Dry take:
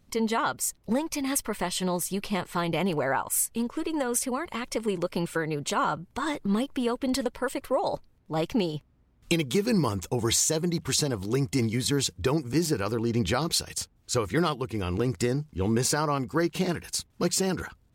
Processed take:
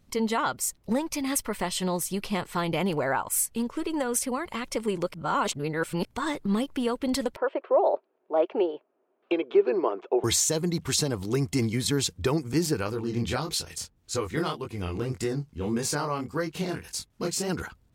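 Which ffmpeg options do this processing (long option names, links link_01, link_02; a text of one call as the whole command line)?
ffmpeg -i in.wav -filter_complex "[0:a]asettb=1/sr,asplit=3[link_01][link_02][link_03];[link_01]atrim=end=7.364[link_04];[link_02]atrim=start=7.36:end=10.24,asetpts=PTS-STARTPTS,afade=type=in:duration=0.004:curve=qsin,afade=type=out:start_time=2.876:duration=0.004:curve=qsin,highpass=frequency=360:width=0.5412,highpass=frequency=360:width=1.3066,equalizer=frequency=380:width_type=q:width=4:gain=10,equalizer=frequency=650:width_type=q:width=4:gain=9,equalizer=frequency=2000:width_type=q:width=4:gain=-8,lowpass=frequency=2500:width=0.5412,lowpass=frequency=2500:width=1.3066[link_05];[link_03]atrim=start=10.236[link_06];[link_04][link_05]acrossfade=duration=0.004:curve1=hsin:curve2=qsin[link_07];[link_07][link_06]acrossfade=duration=0.004:curve1=qsin:curve2=hsin,asplit=3[link_08][link_09][link_10];[link_08]afade=type=out:start_time=12.83:duration=0.02[link_11];[link_09]flanger=delay=19:depth=7.4:speed=1.7,afade=type=in:start_time=12.83:duration=0.02,afade=type=out:start_time=17.48:duration=0.02[link_12];[link_10]afade=type=in:start_time=17.48:duration=0.02[link_13];[link_11][link_12][link_13]amix=inputs=3:normalize=0,asplit=3[link_14][link_15][link_16];[link_14]atrim=end=5.142[link_17];[link_15]atrim=start=5.138:end=6.052,asetpts=PTS-STARTPTS,areverse[link_18];[link_16]atrim=start=6.048[link_19];[link_17][link_18]acrossfade=duration=0.004:curve1=hsin:curve2=hsin[link_20];[link_20][link_19]acrossfade=duration=0.004:curve1=hsin:curve2=hsin" out.wav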